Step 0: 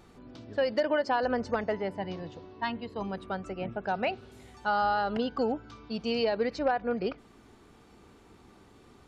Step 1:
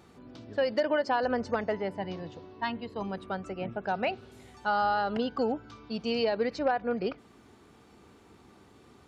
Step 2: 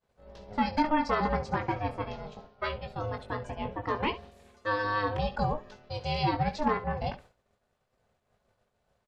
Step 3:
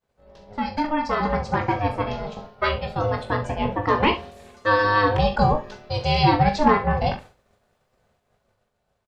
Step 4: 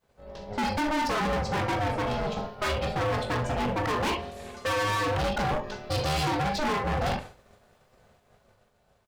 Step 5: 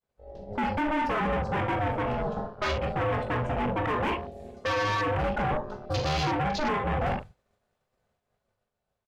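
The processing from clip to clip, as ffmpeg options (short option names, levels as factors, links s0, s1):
-af "highpass=64"
-af "aecho=1:1:20|69:0.473|0.178,agate=range=0.0224:threshold=0.00708:ratio=3:detection=peak,aeval=exprs='val(0)*sin(2*PI*310*n/s)':c=same,volume=1.26"
-filter_complex "[0:a]dynaudnorm=f=330:g=9:m=3.55,asplit=2[s0][s1];[s1]aecho=0:1:41|71:0.316|0.119[s2];[s0][s2]amix=inputs=2:normalize=0"
-af "alimiter=limit=0.2:level=0:latency=1:release=490,asoftclip=type=hard:threshold=0.0266,volume=2.11"
-af "afwtdn=0.0141"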